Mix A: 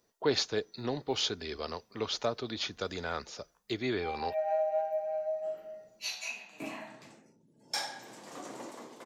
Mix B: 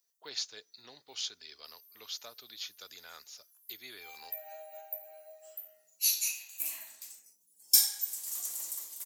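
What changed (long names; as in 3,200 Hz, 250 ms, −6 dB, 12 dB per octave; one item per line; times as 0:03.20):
background: remove head-to-tape spacing loss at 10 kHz 22 dB
master: add first-order pre-emphasis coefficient 0.97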